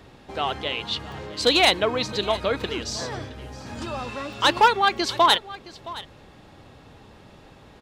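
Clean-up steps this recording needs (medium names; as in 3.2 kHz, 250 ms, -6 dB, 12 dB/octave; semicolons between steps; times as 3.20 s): interpolate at 1.12/2.60/3.75/4.33/4.97 s, 1.3 ms; inverse comb 668 ms -18 dB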